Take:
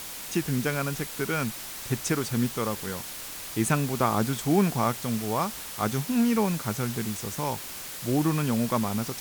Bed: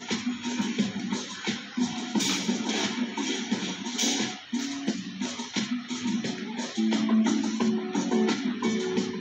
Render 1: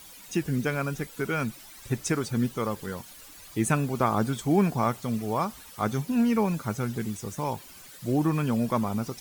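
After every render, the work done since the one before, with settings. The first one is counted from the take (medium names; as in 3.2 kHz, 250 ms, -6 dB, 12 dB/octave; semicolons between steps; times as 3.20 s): noise reduction 13 dB, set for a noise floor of -39 dBFS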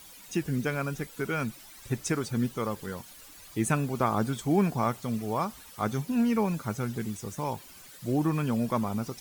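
trim -2 dB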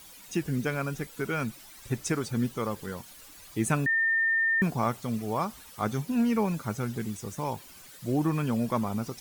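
3.86–4.62 s: bleep 1.81 kHz -22 dBFS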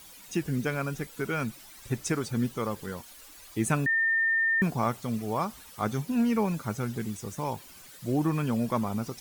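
3.00–3.57 s: peaking EQ 140 Hz -14 dB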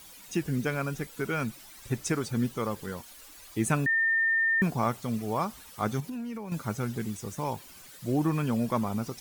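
6.00–6.52 s: compression 16:1, threshold -33 dBFS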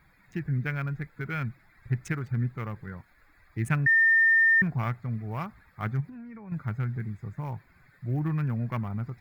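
local Wiener filter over 15 samples; graphic EQ 125/250/500/1000/2000/4000/8000 Hz +7/-7/-9/-6/+10/-6/-11 dB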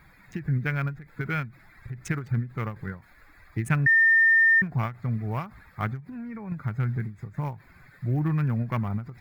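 in parallel at +1 dB: compression, threshold -34 dBFS, peak gain reduction 13.5 dB; on the sum: endings held to a fixed fall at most 180 dB/s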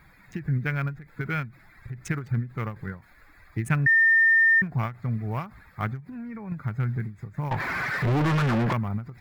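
7.51–8.73 s: overdrive pedal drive 40 dB, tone 2.1 kHz, clips at -16.5 dBFS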